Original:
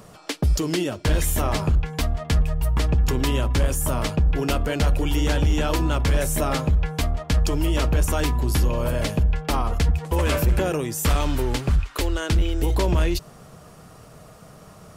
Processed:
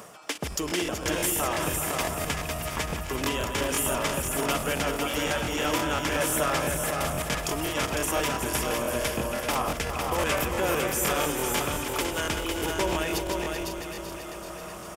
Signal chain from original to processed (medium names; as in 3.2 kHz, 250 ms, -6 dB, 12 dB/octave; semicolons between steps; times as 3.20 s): backward echo that repeats 192 ms, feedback 72%, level -7 dB; high-pass 600 Hz 6 dB/octave; peaking EQ 4.2 kHz -9 dB 0.3 oct; reverse; upward compressor, threshold -32 dBFS; reverse; crackle 180 per s -56 dBFS; delay 504 ms -4.5 dB; crackling interface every 0.17 s, samples 1024, repeat, from 0.33 s